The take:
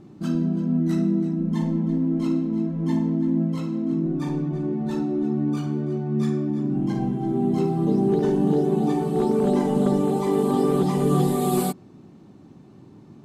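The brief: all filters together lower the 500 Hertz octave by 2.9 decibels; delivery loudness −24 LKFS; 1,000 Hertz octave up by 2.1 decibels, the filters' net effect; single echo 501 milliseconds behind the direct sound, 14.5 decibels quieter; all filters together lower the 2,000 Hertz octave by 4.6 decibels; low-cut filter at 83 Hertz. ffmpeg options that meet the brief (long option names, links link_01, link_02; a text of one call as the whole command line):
ffmpeg -i in.wav -af "highpass=83,equalizer=frequency=500:width_type=o:gain=-5,equalizer=frequency=1000:width_type=o:gain=7,equalizer=frequency=2000:width_type=o:gain=-8.5,aecho=1:1:501:0.188" out.wav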